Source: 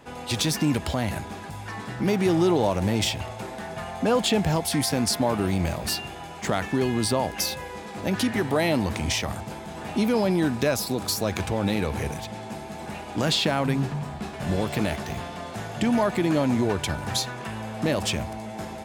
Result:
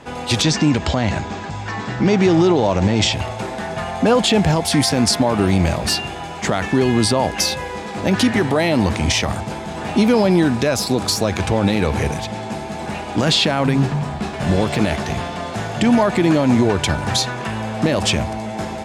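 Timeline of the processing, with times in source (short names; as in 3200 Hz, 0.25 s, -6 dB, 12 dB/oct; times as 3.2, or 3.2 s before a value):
0.42–3.13 steep low-pass 7900 Hz 48 dB/oct
whole clip: LPF 8800 Hz 12 dB/oct; limiter -15 dBFS; gain +9 dB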